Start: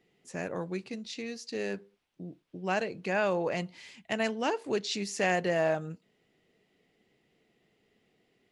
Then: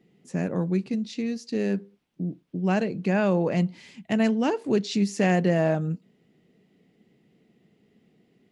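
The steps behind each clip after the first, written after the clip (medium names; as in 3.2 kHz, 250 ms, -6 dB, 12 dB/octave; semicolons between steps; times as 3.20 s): peaking EQ 190 Hz +14 dB 1.9 oct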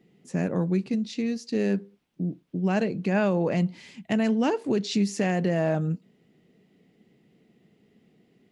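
peak limiter -16.5 dBFS, peak gain reduction 6 dB; trim +1 dB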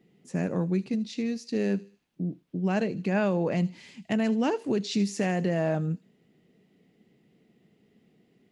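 feedback echo behind a high-pass 77 ms, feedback 45%, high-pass 3.7 kHz, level -13 dB; trim -2 dB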